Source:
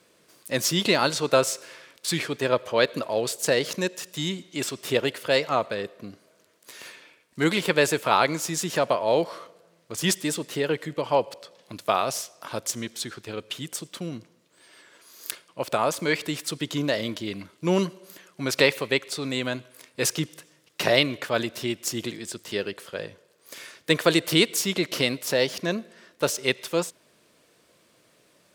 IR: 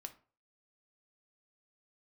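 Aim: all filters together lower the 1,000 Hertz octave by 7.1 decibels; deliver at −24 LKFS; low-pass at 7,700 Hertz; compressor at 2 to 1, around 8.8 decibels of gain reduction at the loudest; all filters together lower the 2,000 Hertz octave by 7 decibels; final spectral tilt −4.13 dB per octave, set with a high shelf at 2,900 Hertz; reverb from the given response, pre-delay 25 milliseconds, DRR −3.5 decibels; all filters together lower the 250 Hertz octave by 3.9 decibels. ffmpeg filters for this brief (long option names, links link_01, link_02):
-filter_complex "[0:a]lowpass=7700,equalizer=frequency=250:width_type=o:gain=-5,equalizer=frequency=1000:width_type=o:gain=-7.5,equalizer=frequency=2000:width_type=o:gain=-4,highshelf=frequency=2900:gain=-6.5,acompressor=threshold=-35dB:ratio=2,asplit=2[link_01][link_02];[1:a]atrim=start_sample=2205,adelay=25[link_03];[link_02][link_03]afir=irnorm=-1:irlink=0,volume=8.5dB[link_04];[link_01][link_04]amix=inputs=2:normalize=0,volume=8dB"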